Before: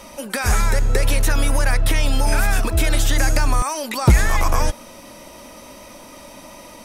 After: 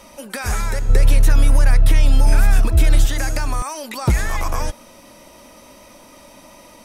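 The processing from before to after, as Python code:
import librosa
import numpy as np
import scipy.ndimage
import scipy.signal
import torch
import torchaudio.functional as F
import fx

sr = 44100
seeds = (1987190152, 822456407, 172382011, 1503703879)

y = fx.low_shelf(x, sr, hz=190.0, db=10.5, at=(0.89, 3.06))
y = y * 10.0 ** (-4.0 / 20.0)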